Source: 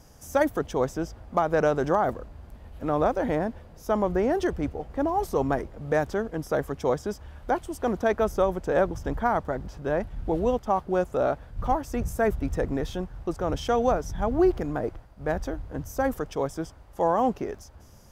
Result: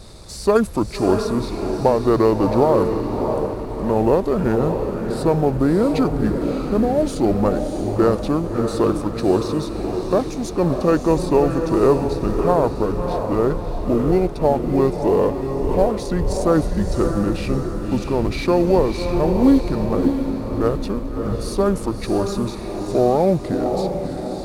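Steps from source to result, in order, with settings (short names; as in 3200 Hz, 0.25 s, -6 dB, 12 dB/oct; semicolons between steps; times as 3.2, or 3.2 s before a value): G.711 law mismatch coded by mu; speed mistake 45 rpm record played at 33 rpm; diffused feedback echo 0.626 s, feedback 46%, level -5.5 dB; gain +6 dB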